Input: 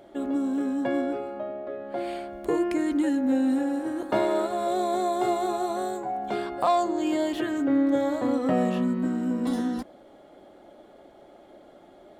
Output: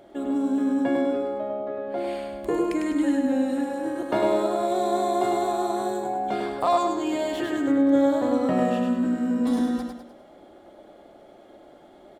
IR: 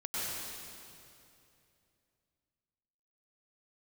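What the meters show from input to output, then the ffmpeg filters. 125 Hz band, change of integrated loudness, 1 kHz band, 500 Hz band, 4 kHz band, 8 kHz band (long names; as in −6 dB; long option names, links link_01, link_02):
−0.5 dB, +2.0 dB, +2.0 dB, +2.5 dB, +1.5 dB, +2.0 dB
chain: -af "aecho=1:1:101|202|303|404|505:0.631|0.265|0.111|0.0467|0.0196"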